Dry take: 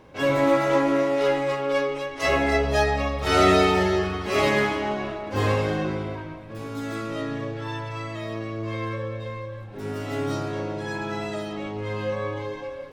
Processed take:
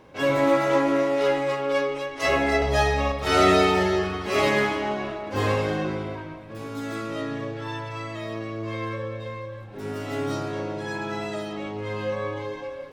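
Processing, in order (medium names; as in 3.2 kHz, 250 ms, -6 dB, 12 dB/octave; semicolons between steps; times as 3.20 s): bass shelf 100 Hz -5.5 dB; 2.56–3.12 s: flutter echo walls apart 9.7 m, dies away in 0.61 s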